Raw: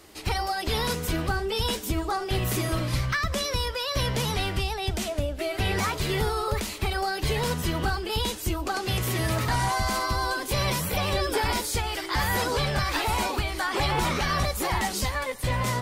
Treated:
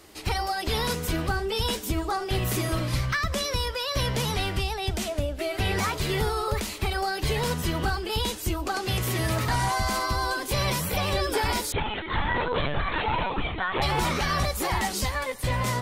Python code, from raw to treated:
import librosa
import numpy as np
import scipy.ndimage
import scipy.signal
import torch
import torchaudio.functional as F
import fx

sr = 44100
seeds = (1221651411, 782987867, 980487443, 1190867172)

y = fx.lpc_vocoder(x, sr, seeds[0], excitation='pitch_kept', order=16, at=(11.72, 13.82))